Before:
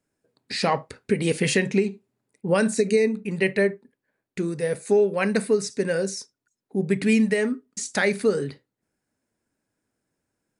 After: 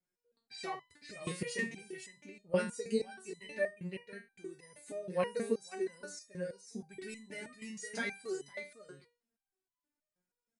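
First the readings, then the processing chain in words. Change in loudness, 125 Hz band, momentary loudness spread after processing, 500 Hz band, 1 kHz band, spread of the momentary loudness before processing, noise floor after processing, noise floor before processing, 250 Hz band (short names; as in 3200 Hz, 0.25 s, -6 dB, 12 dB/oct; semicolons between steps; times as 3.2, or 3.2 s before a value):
-16.0 dB, -17.5 dB, 15 LU, -15.5 dB, -14.0 dB, 10 LU, under -85 dBFS, -84 dBFS, -18.0 dB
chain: echo 0.51 s -7 dB; stepped resonator 6.3 Hz 180–1000 Hz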